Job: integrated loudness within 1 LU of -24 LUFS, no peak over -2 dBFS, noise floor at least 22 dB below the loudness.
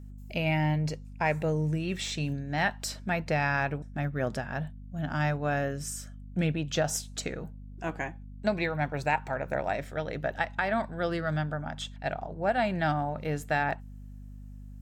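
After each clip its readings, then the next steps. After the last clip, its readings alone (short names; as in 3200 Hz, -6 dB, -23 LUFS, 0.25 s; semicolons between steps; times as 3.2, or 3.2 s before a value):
hum 50 Hz; harmonics up to 250 Hz; hum level -42 dBFS; loudness -31.0 LUFS; peak -13.0 dBFS; loudness target -24.0 LUFS
-> notches 50/100/150/200/250 Hz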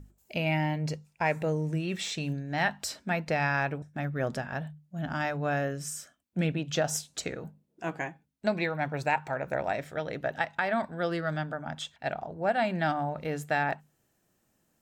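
hum none; loudness -31.5 LUFS; peak -13.0 dBFS; loudness target -24.0 LUFS
-> gain +7.5 dB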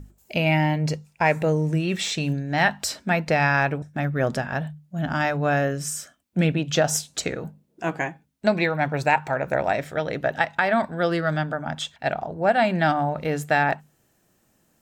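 loudness -24.0 LUFS; peak -5.5 dBFS; noise floor -66 dBFS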